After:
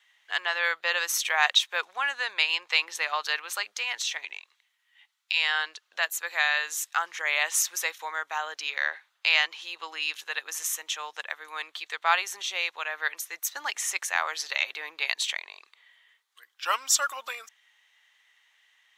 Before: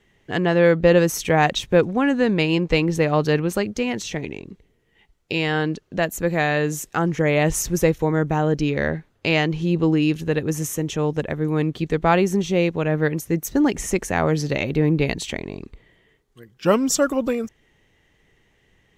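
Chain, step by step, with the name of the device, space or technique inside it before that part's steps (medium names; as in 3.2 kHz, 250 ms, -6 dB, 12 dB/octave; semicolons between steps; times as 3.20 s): headphones lying on a table (high-pass 1 kHz 24 dB/octave; peaking EQ 3.7 kHz +5.5 dB 0.47 oct); 4.38–5.37 s: high-pass 810 Hz 12 dB/octave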